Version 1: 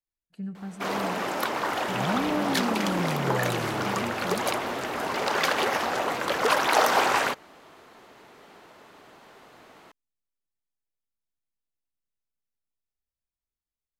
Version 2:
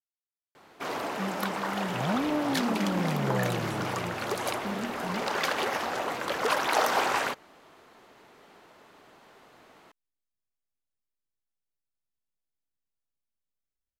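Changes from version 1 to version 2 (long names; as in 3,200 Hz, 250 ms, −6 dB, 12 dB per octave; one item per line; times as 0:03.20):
speech: entry +0.80 s
first sound −4.0 dB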